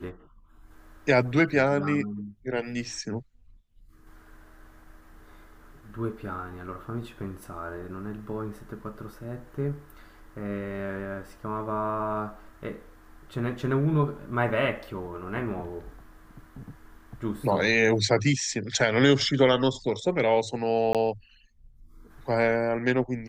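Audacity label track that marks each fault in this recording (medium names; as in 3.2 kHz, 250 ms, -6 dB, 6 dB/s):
20.930000	20.950000	dropout 17 ms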